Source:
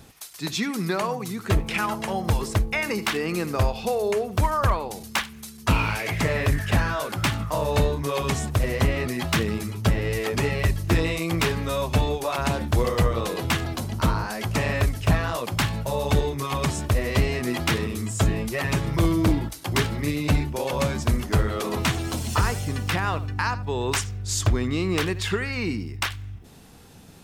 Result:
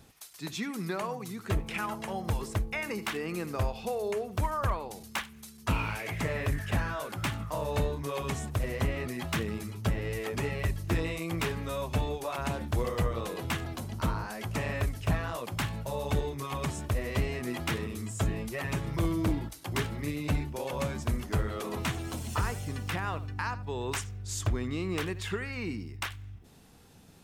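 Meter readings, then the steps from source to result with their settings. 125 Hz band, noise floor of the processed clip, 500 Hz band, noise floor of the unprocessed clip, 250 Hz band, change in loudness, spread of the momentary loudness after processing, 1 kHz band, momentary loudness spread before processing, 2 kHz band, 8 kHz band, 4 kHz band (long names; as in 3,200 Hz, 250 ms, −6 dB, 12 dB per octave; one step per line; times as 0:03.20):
−8.0 dB, −51 dBFS, −8.0 dB, −43 dBFS, −8.0 dB, −8.0 dB, 5 LU, −8.0 dB, 5 LU, −8.5 dB, −9.0 dB, −10.0 dB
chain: dynamic equaliser 4,700 Hz, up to −4 dB, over −42 dBFS, Q 1.6
level −8 dB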